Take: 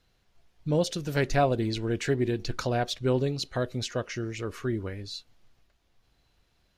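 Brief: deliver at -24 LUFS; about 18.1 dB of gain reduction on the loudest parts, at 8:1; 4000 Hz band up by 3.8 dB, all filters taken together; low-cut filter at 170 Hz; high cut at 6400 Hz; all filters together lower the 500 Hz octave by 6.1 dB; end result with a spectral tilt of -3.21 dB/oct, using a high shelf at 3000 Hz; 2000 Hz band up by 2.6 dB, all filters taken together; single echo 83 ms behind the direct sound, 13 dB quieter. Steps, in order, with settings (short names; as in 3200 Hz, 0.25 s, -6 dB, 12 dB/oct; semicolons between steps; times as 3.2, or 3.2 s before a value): HPF 170 Hz; LPF 6400 Hz; bell 500 Hz -8 dB; bell 2000 Hz +4 dB; high shelf 3000 Hz -5.5 dB; bell 4000 Hz +8 dB; compressor 8:1, threshold -43 dBFS; echo 83 ms -13 dB; gain +22.5 dB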